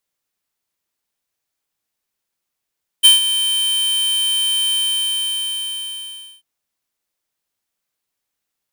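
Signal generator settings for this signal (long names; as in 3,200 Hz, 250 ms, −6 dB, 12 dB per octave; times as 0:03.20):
note with an ADSR envelope square 3,100 Hz, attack 23 ms, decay 143 ms, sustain −11.5 dB, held 1.70 s, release 1,690 ms −6.5 dBFS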